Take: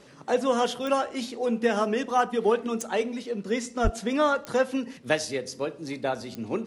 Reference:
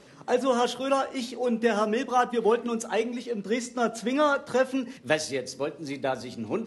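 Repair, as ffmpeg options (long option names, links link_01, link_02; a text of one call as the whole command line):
ffmpeg -i in.wav -filter_complex "[0:a]adeclick=threshold=4,asplit=3[link_01][link_02][link_03];[link_01]afade=type=out:start_time=3.83:duration=0.02[link_04];[link_02]highpass=frequency=140:width=0.5412,highpass=frequency=140:width=1.3066,afade=type=in:start_time=3.83:duration=0.02,afade=type=out:start_time=3.95:duration=0.02[link_05];[link_03]afade=type=in:start_time=3.95:duration=0.02[link_06];[link_04][link_05][link_06]amix=inputs=3:normalize=0" out.wav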